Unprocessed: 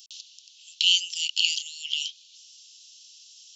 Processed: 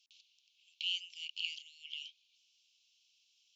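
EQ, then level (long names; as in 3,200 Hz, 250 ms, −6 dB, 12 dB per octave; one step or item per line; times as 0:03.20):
formant filter u
+4.0 dB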